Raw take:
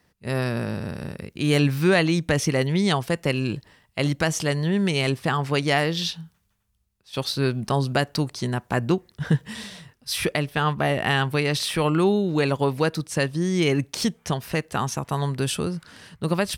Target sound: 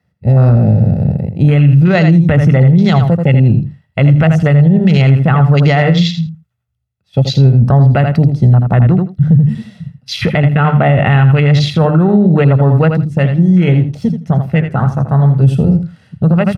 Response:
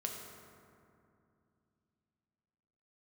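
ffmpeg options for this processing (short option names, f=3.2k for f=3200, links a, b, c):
-filter_complex "[0:a]highpass=f=87:w=0.5412,highpass=f=87:w=1.3066,bandreject=f=50:t=h:w=6,bandreject=f=100:t=h:w=6,bandreject=f=150:t=h:w=6,bandreject=f=200:t=h:w=6,bandreject=f=250:t=h:w=6,bandreject=f=300:t=h:w=6,afwtdn=0.0355,bass=f=250:g=12,treble=f=4k:g=-9,bandreject=f=1.2k:w=22,aecho=1:1:1.5:0.51,asettb=1/sr,asplit=3[a][b][c];[a]atrim=end=12.924[d];[b]atrim=start=12.92:end=15.44,asetpts=PTS-STARTPTS,afade=t=in:d=0.004:c=qsin,afade=t=out:st=2.516:d=0.004:c=qsin,flanger=delay=1.3:depth=9:regen=-80:speed=2:shape=triangular[e];[c]atrim=start=15.436[f];[d][e]acrossfade=d=0.004:c1=hsin:c2=qsin[g];[g][f]acrossfade=d=0.004:c1=qsin:c2=hsin,aecho=1:1:82|164:0.316|0.0474,alimiter=level_in=12.5dB:limit=-1dB:release=50:level=0:latency=1,volume=-1dB"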